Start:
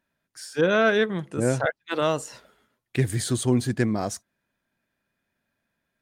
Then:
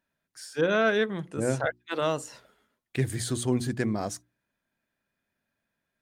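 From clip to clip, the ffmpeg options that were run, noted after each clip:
-af "bandreject=f=60:t=h:w=6,bandreject=f=120:t=h:w=6,bandreject=f=180:t=h:w=6,bandreject=f=240:t=h:w=6,bandreject=f=300:t=h:w=6,bandreject=f=360:t=h:w=6,volume=-3.5dB"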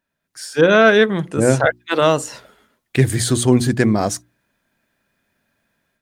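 -af "dynaudnorm=f=220:g=3:m=10.5dB,volume=2.5dB"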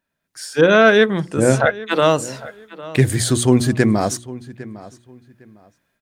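-filter_complex "[0:a]asplit=2[a][b];[b]adelay=805,lowpass=f=3.6k:p=1,volume=-18dB,asplit=2[c][d];[d]adelay=805,lowpass=f=3.6k:p=1,volume=0.24[e];[a][c][e]amix=inputs=3:normalize=0"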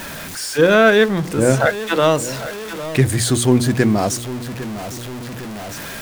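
-af "aeval=exprs='val(0)+0.5*0.0668*sgn(val(0))':c=same,volume=-1dB"

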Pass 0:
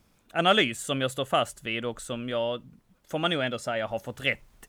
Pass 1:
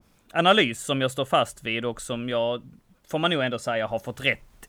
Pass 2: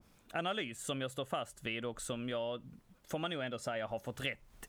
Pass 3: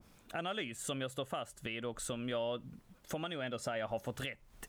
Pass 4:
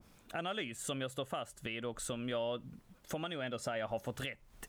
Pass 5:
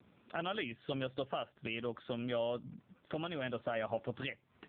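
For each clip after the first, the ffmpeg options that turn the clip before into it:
-af "adynamicequalizer=threshold=0.0141:dfrequency=1800:dqfactor=0.7:tfrequency=1800:tqfactor=0.7:attack=5:release=100:ratio=0.375:range=2.5:mode=cutabove:tftype=highshelf,volume=3.5dB"
-af "acompressor=threshold=-32dB:ratio=4,volume=-4dB"
-af "alimiter=level_in=5.5dB:limit=-24dB:level=0:latency=1:release=491,volume=-5.5dB,volume=3dB"
-af anull
-af "volume=2dB" -ar 8000 -c:a libopencore_amrnb -b:a 5900

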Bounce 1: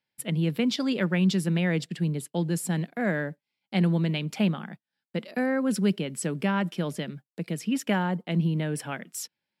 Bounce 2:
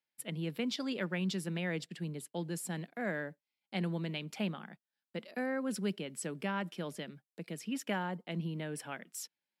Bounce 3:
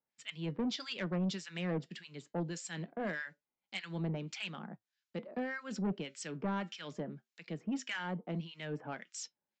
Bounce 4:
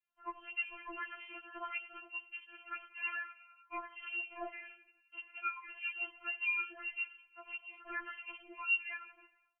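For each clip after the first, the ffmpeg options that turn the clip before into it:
-af "highpass=f=260:p=1,volume=-7.5dB"
-filter_complex "[0:a]acrossover=split=1300[a][b];[a]aeval=exprs='val(0)*(1-1/2+1/2*cos(2*PI*1.7*n/s))':c=same[c];[b]aeval=exprs='val(0)*(1-1/2-1/2*cos(2*PI*1.7*n/s))':c=same[d];[c][d]amix=inputs=2:normalize=0,flanger=delay=4.3:depth=2.8:regen=-78:speed=0.22:shape=triangular,aresample=16000,asoftclip=type=tanh:threshold=-39dB,aresample=44100,volume=10dB"
-filter_complex "[0:a]asplit=7[a][b][c][d][e][f][g];[b]adelay=86,afreqshift=39,volume=-17dB[h];[c]adelay=172,afreqshift=78,volume=-21.3dB[i];[d]adelay=258,afreqshift=117,volume=-25.6dB[j];[e]adelay=344,afreqshift=156,volume=-29.9dB[k];[f]adelay=430,afreqshift=195,volume=-34.2dB[l];[g]adelay=516,afreqshift=234,volume=-38.5dB[m];[a][h][i][j][k][l][m]amix=inputs=7:normalize=0,lowpass=f=2.7k:t=q:w=0.5098,lowpass=f=2.7k:t=q:w=0.6013,lowpass=f=2.7k:t=q:w=0.9,lowpass=f=2.7k:t=q:w=2.563,afreqshift=-3200,afftfilt=real='re*4*eq(mod(b,16),0)':imag='im*4*eq(mod(b,16),0)':win_size=2048:overlap=0.75,volume=4dB"

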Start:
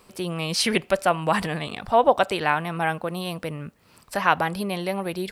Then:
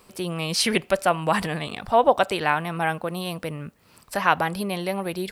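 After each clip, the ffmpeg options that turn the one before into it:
-af "highshelf=f=9.3k:g=3.5"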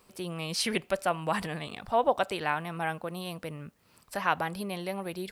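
-af "acrusher=bits=10:mix=0:aa=0.000001,volume=-7.5dB"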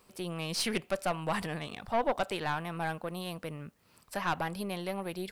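-af "aeval=exprs='(tanh(12.6*val(0)+0.4)-tanh(0.4))/12.6':c=same"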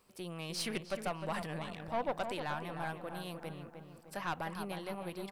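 -filter_complex "[0:a]asplit=2[a][b];[b]adelay=306,lowpass=f=2k:p=1,volume=-7dB,asplit=2[c][d];[d]adelay=306,lowpass=f=2k:p=1,volume=0.51,asplit=2[e][f];[f]adelay=306,lowpass=f=2k:p=1,volume=0.51,asplit=2[g][h];[h]adelay=306,lowpass=f=2k:p=1,volume=0.51,asplit=2[i][j];[j]adelay=306,lowpass=f=2k:p=1,volume=0.51,asplit=2[k][l];[l]adelay=306,lowpass=f=2k:p=1,volume=0.51[m];[a][c][e][g][i][k][m]amix=inputs=7:normalize=0,volume=-6dB"

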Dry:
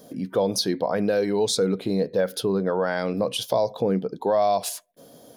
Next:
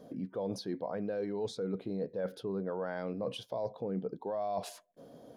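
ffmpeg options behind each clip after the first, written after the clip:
-af "lowpass=f=1.3k:p=1,areverse,acompressor=threshold=-30dB:ratio=6,areverse,volume=-3dB"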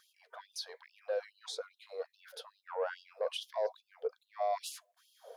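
-af "bandreject=f=50:t=h:w=6,bandreject=f=100:t=h:w=6,bandreject=f=150:t=h:w=6,bandreject=f=200:t=h:w=6,bandreject=f=250:t=h:w=6,bandreject=f=300:t=h:w=6,bandreject=f=350:t=h:w=6,bandreject=f=400:t=h:w=6,asoftclip=type=tanh:threshold=-26.5dB,afftfilt=real='re*gte(b*sr/1024,390*pow(2700/390,0.5+0.5*sin(2*PI*2.4*pts/sr)))':imag='im*gte(b*sr/1024,390*pow(2700/390,0.5+0.5*sin(2*PI*2.4*pts/sr)))':win_size=1024:overlap=0.75,volume=4.5dB"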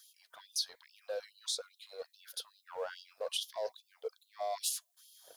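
-filter_complex "[0:a]acrossover=split=920|2200[a][b][c];[a]aeval=exprs='sgn(val(0))*max(abs(val(0))-0.00237,0)':c=same[d];[c]aexciter=amount=4.6:drive=2.9:freq=3k[e];[d][b][e]amix=inputs=3:normalize=0,volume=-3.5dB"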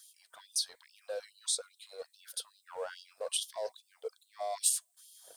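-af "equalizer=f=8.5k:w=3.5:g=13.5"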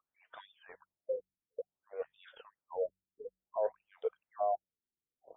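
-af "aemphasis=mode=reproduction:type=75kf,bandreject=f=46.85:t=h:w=4,bandreject=f=93.7:t=h:w=4,bandreject=f=140.55:t=h:w=4,bandreject=f=187.4:t=h:w=4,afftfilt=real='re*lt(b*sr/1024,420*pow(3800/420,0.5+0.5*sin(2*PI*0.56*pts/sr)))':imag='im*lt(b*sr/1024,420*pow(3800/420,0.5+0.5*sin(2*PI*0.56*pts/sr)))':win_size=1024:overlap=0.75,volume=5.5dB"

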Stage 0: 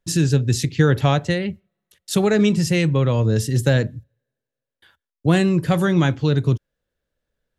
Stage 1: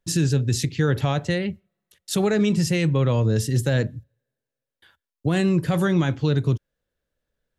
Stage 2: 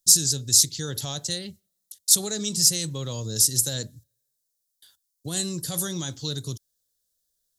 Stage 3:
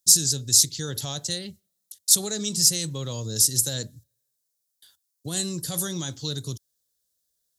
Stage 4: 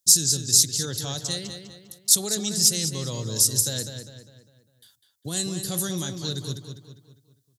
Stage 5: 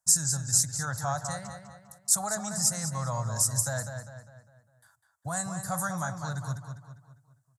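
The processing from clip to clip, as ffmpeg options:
-af "alimiter=limit=-10.5dB:level=0:latency=1:release=37,volume=-1.5dB"
-af "aexciter=amount=14:drive=7.3:freq=3.8k,volume=-12dB"
-af "highpass=47"
-filter_complex "[0:a]asplit=2[a][b];[b]adelay=201,lowpass=f=4.8k:p=1,volume=-7dB,asplit=2[c][d];[d]adelay=201,lowpass=f=4.8k:p=1,volume=0.45,asplit=2[e][f];[f]adelay=201,lowpass=f=4.8k:p=1,volume=0.45,asplit=2[g][h];[h]adelay=201,lowpass=f=4.8k:p=1,volume=0.45,asplit=2[i][j];[j]adelay=201,lowpass=f=4.8k:p=1,volume=0.45[k];[a][c][e][g][i][k]amix=inputs=6:normalize=0"
-af "firequalizer=gain_entry='entry(130,0);entry(380,-23);entry(650,10);entry(1400,10);entry(3000,-24);entry(4900,-13);entry(7700,-3);entry(16000,-17)':delay=0.05:min_phase=1"

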